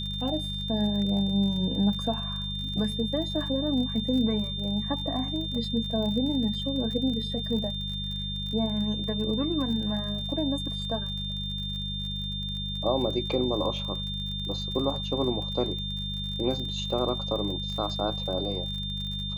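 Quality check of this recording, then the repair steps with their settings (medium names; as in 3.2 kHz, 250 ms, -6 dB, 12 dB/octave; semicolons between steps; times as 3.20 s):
crackle 45 per s -35 dBFS
hum 50 Hz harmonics 4 -35 dBFS
whine 3.6 kHz -33 dBFS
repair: de-click; de-hum 50 Hz, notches 4; band-stop 3.6 kHz, Q 30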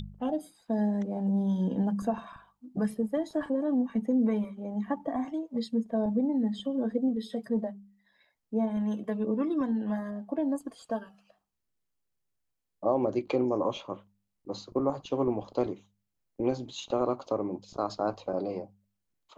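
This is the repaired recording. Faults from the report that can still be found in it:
nothing left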